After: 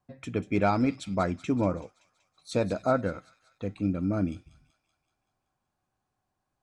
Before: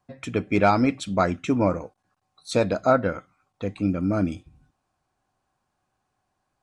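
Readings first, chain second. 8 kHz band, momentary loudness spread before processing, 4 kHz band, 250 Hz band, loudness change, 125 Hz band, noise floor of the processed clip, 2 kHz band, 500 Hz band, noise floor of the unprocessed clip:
-7.0 dB, 13 LU, -7.0 dB, -4.0 dB, -5.0 dB, -3.5 dB, -82 dBFS, -7.0 dB, -6.0 dB, -77 dBFS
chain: low shelf 410 Hz +4.5 dB; thin delay 0.19 s, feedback 59%, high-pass 3600 Hz, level -10.5 dB; gain -7.5 dB

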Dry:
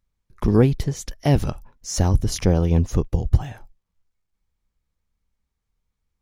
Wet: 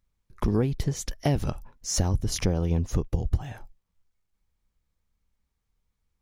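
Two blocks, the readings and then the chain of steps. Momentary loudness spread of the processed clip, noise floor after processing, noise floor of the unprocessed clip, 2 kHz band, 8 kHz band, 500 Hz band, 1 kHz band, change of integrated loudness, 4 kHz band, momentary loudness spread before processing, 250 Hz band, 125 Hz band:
8 LU, -79 dBFS, -79 dBFS, -4.5 dB, -1.0 dB, -7.5 dB, -5.5 dB, -6.5 dB, -2.0 dB, 11 LU, -7.0 dB, -6.5 dB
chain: compressor 4:1, threshold -21 dBFS, peak gain reduction 10.5 dB

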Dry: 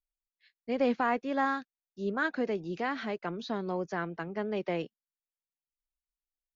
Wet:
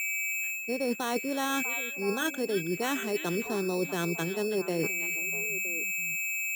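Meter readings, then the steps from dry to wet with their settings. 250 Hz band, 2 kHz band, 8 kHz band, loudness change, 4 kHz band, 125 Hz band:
+1.5 dB, +7.0 dB, n/a, +3.0 dB, +8.0 dB, +4.5 dB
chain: fifteen-band EQ 160 Hz +6 dB, 400 Hz +9 dB, 1600 Hz +3 dB, 4000 Hz -7 dB; whine 2300 Hz -36 dBFS; reverse; compressor 12:1, threshold -34 dBFS, peak gain reduction 15.5 dB; reverse; sample-and-hold 9×; notch 4600 Hz, Q 20; on a send: delay with a stepping band-pass 0.322 s, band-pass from 2600 Hz, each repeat -1.4 oct, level -6 dB; on the sum: gain +7.5 dB

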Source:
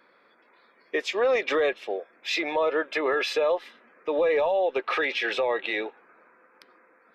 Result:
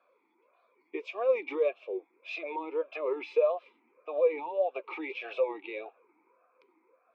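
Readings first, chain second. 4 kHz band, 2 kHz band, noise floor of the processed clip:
-18.0 dB, -13.0 dB, -72 dBFS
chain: vowel sweep a-u 1.7 Hz; gain +2 dB

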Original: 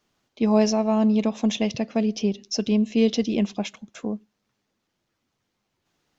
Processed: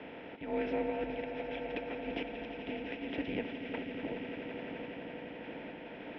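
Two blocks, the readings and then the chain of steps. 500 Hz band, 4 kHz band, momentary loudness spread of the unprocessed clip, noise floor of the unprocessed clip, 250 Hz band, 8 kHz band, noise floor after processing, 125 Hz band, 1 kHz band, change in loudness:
-11.5 dB, -15.0 dB, 12 LU, -78 dBFS, -17.5 dB, n/a, -47 dBFS, -18.0 dB, -10.0 dB, -16.0 dB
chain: per-bin compression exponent 0.4; notch 1300 Hz, Q 7.1; harmonic-percussive split harmonic -6 dB; compressor, threshold -28 dBFS, peak gain reduction 11.5 dB; auto swell 0.17 s; random-step tremolo 3.5 Hz; swelling echo 85 ms, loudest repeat 8, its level -13 dB; mistuned SSB -170 Hz 420–2800 Hz; gain +2.5 dB

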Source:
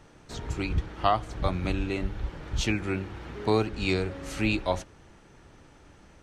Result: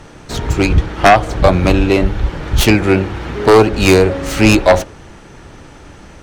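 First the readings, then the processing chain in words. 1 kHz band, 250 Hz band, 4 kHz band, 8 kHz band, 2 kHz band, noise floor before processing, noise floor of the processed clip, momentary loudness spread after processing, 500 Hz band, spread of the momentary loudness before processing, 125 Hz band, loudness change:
+16.0 dB, +17.0 dB, +15.0 dB, +18.0 dB, +17.0 dB, -55 dBFS, -38 dBFS, 11 LU, +19.0 dB, 10 LU, +15.5 dB, +17.0 dB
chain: tracing distortion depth 0.098 ms; dynamic EQ 560 Hz, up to +7 dB, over -40 dBFS, Q 1.1; sine folder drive 10 dB, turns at -4 dBFS; gain +2.5 dB

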